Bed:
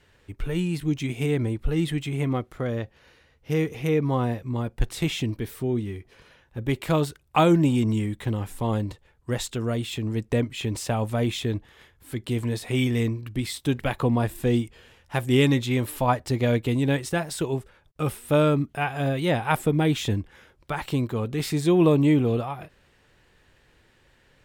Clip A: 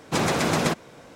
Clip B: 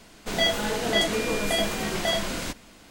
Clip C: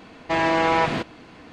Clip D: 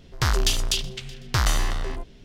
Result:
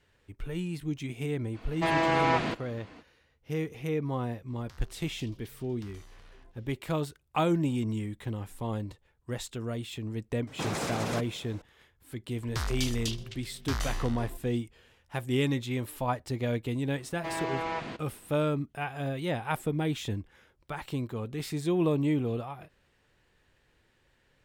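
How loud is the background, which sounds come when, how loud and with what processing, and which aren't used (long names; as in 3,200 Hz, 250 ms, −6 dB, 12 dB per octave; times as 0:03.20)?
bed −8 dB
0:01.52: mix in C −5.5 dB, fades 0.05 s
0:04.48: mix in D −13.5 dB + downward compressor 4 to 1, threshold −39 dBFS
0:10.47: mix in A −5 dB + brickwall limiter −19 dBFS
0:12.34: mix in D −11 dB
0:16.94: mix in C −13.5 dB
not used: B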